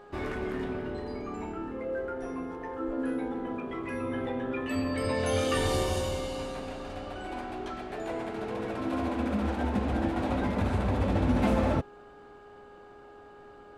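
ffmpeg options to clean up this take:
-af "bandreject=f=411.6:t=h:w=4,bandreject=f=823.2:t=h:w=4,bandreject=f=1234.8:t=h:w=4,bandreject=f=1646.4:t=h:w=4"

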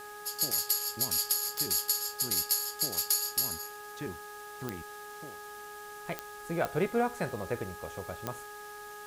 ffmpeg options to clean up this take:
-af "adeclick=t=4,bandreject=f=416.1:t=h:w=4,bandreject=f=832.2:t=h:w=4,bandreject=f=1248.3:t=h:w=4,bandreject=f=1664.4:t=h:w=4,afwtdn=0.0025"

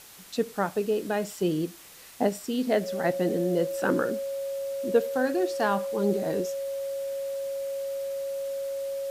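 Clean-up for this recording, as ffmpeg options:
-af "adeclick=t=4,bandreject=f=550:w=30,afftdn=nr=28:nf=-45"

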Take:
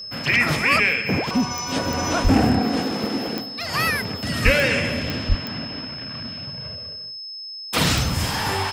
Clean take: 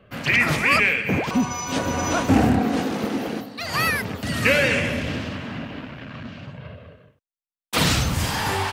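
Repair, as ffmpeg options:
-filter_complex "[0:a]adeclick=t=4,bandreject=f=5200:w=30,asplit=3[s0][s1][s2];[s0]afade=t=out:st=2.23:d=0.02[s3];[s1]highpass=f=140:w=0.5412,highpass=f=140:w=1.3066,afade=t=in:st=2.23:d=0.02,afade=t=out:st=2.35:d=0.02[s4];[s2]afade=t=in:st=2.35:d=0.02[s5];[s3][s4][s5]amix=inputs=3:normalize=0,asplit=3[s6][s7][s8];[s6]afade=t=out:st=4.44:d=0.02[s9];[s7]highpass=f=140:w=0.5412,highpass=f=140:w=1.3066,afade=t=in:st=4.44:d=0.02,afade=t=out:st=4.56:d=0.02[s10];[s8]afade=t=in:st=4.56:d=0.02[s11];[s9][s10][s11]amix=inputs=3:normalize=0,asplit=3[s12][s13][s14];[s12]afade=t=out:st=5.28:d=0.02[s15];[s13]highpass=f=140:w=0.5412,highpass=f=140:w=1.3066,afade=t=in:st=5.28:d=0.02,afade=t=out:st=5.4:d=0.02[s16];[s14]afade=t=in:st=5.4:d=0.02[s17];[s15][s16][s17]amix=inputs=3:normalize=0"

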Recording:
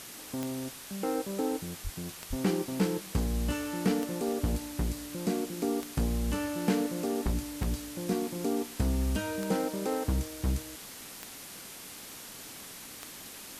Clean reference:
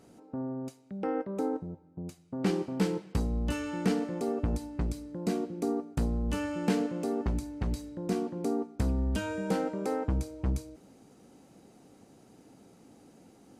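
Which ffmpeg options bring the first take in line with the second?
-filter_complex "[0:a]adeclick=t=4,asplit=3[s0][s1][s2];[s0]afade=t=out:st=1.83:d=0.02[s3];[s1]highpass=f=140:w=0.5412,highpass=f=140:w=1.3066,afade=t=in:st=1.83:d=0.02,afade=t=out:st=1.95:d=0.02[s4];[s2]afade=t=in:st=1.95:d=0.02[s5];[s3][s4][s5]amix=inputs=3:normalize=0,asplit=3[s6][s7][s8];[s6]afade=t=out:st=2.29:d=0.02[s9];[s7]highpass=f=140:w=0.5412,highpass=f=140:w=1.3066,afade=t=in:st=2.29:d=0.02,afade=t=out:st=2.41:d=0.02[s10];[s8]afade=t=in:st=2.41:d=0.02[s11];[s9][s10][s11]amix=inputs=3:normalize=0,asplit=3[s12][s13][s14];[s12]afade=t=out:st=7.24:d=0.02[s15];[s13]highpass=f=140:w=0.5412,highpass=f=140:w=1.3066,afade=t=in:st=7.24:d=0.02,afade=t=out:st=7.36:d=0.02[s16];[s14]afade=t=in:st=7.36:d=0.02[s17];[s15][s16][s17]amix=inputs=3:normalize=0,afwtdn=0.0063"

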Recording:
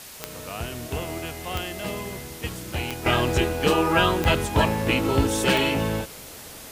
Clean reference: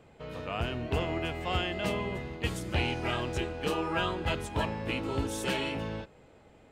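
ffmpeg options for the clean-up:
-af "adeclick=t=4,afwtdn=0.0089,asetnsamples=n=441:p=0,asendcmd='3.06 volume volume -10.5dB',volume=1"

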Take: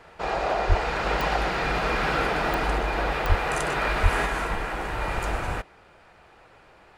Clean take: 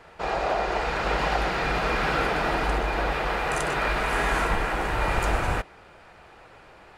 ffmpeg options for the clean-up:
-filter_complex "[0:a]adeclick=t=4,asplit=3[s0][s1][s2];[s0]afade=t=out:st=0.68:d=0.02[s3];[s1]highpass=f=140:w=0.5412,highpass=f=140:w=1.3066,afade=t=in:st=0.68:d=0.02,afade=t=out:st=0.8:d=0.02[s4];[s2]afade=t=in:st=0.8:d=0.02[s5];[s3][s4][s5]amix=inputs=3:normalize=0,asplit=3[s6][s7][s8];[s6]afade=t=out:st=3.28:d=0.02[s9];[s7]highpass=f=140:w=0.5412,highpass=f=140:w=1.3066,afade=t=in:st=3.28:d=0.02,afade=t=out:st=3.4:d=0.02[s10];[s8]afade=t=in:st=3.4:d=0.02[s11];[s9][s10][s11]amix=inputs=3:normalize=0,asplit=3[s12][s13][s14];[s12]afade=t=out:st=4.02:d=0.02[s15];[s13]highpass=f=140:w=0.5412,highpass=f=140:w=1.3066,afade=t=in:st=4.02:d=0.02,afade=t=out:st=4.14:d=0.02[s16];[s14]afade=t=in:st=4.14:d=0.02[s17];[s15][s16][s17]amix=inputs=3:normalize=0,asetnsamples=n=441:p=0,asendcmd='4.26 volume volume 3.5dB',volume=1"

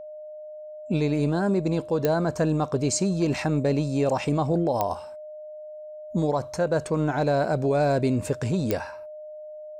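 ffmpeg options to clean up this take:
-af "adeclick=t=4,bandreject=f=610:w=30"

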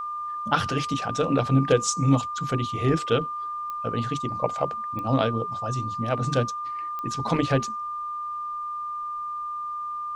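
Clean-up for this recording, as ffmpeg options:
-af "adeclick=t=4,bandreject=f=1200:w=30,agate=range=0.0891:threshold=0.0631"

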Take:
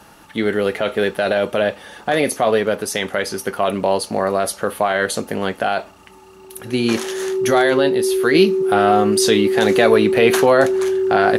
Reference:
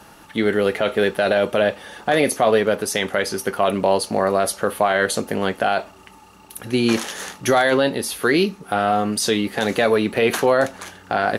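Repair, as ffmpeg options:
-af "bandreject=f=380:w=30,asetnsamples=n=441:p=0,asendcmd='8.35 volume volume -3.5dB',volume=1"

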